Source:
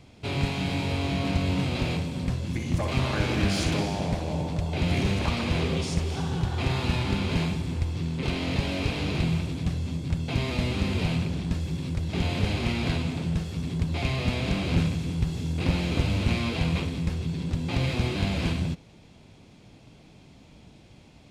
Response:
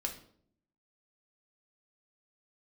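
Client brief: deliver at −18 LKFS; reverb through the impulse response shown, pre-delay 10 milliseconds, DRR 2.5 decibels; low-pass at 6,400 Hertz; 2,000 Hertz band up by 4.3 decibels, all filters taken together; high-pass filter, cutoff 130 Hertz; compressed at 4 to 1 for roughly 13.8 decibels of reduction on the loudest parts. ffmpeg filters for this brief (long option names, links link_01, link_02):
-filter_complex "[0:a]highpass=130,lowpass=6400,equalizer=frequency=2000:width_type=o:gain=5.5,acompressor=threshold=-40dB:ratio=4,asplit=2[link_01][link_02];[1:a]atrim=start_sample=2205,adelay=10[link_03];[link_02][link_03]afir=irnorm=-1:irlink=0,volume=-3.5dB[link_04];[link_01][link_04]amix=inputs=2:normalize=0,volume=21dB"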